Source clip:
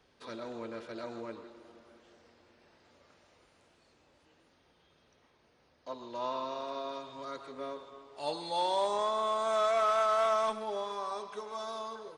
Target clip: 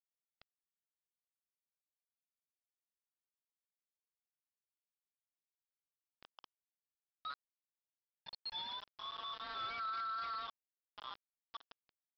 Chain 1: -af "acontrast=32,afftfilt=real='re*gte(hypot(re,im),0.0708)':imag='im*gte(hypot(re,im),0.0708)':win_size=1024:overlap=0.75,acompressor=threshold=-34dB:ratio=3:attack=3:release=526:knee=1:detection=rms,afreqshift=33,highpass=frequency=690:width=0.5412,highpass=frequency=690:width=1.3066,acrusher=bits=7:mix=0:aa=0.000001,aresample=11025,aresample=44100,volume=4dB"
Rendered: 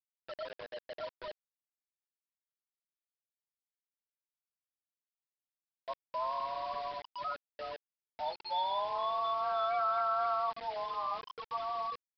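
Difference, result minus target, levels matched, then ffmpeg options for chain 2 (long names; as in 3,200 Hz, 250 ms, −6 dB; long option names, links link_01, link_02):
500 Hz band +17.5 dB
-af "acontrast=32,afftfilt=real='re*gte(hypot(re,im),0.0708)':imag='im*gte(hypot(re,im),0.0708)':win_size=1024:overlap=0.75,acompressor=threshold=-34dB:ratio=3:attack=3:release=526:knee=1:detection=rms,afreqshift=33,highpass=frequency=1600:width=0.5412,highpass=frequency=1600:width=1.3066,acrusher=bits=7:mix=0:aa=0.000001,aresample=11025,aresample=44100,volume=4dB"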